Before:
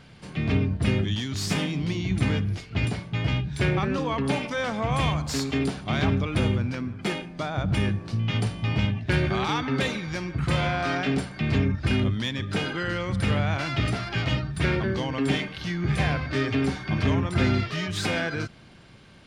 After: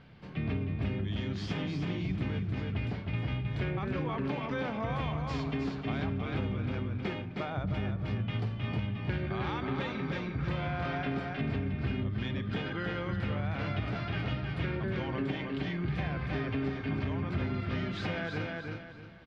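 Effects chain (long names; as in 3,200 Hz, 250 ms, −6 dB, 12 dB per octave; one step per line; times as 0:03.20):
on a send: repeating echo 314 ms, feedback 31%, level −5 dB
on the sum: downward compressor, threshold −24 dBFS, peak gain reduction 8 dB
high-frequency loss of the air 240 metres
level −4.5 dB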